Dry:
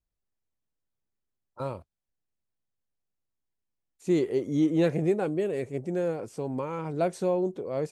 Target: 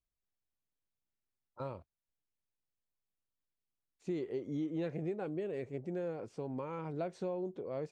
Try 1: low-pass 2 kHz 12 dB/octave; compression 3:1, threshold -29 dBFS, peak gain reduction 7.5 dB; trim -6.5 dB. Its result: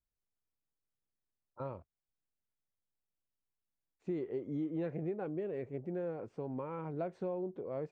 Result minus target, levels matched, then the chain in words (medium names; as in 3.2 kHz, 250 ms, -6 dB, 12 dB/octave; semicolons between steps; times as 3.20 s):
4 kHz band -9.0 dB
low-pass 4.7 kHz 12 dB/octave; compression 3:1, threshold -29 dBFS, peak gain reduction 7.5 dB; trim -6.5 dB